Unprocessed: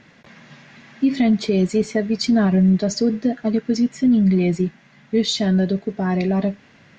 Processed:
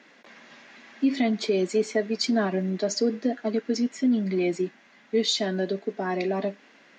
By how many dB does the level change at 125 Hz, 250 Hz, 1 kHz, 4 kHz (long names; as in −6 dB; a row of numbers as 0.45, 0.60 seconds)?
−14.0, −9.0, −2.5, −2.5 decibels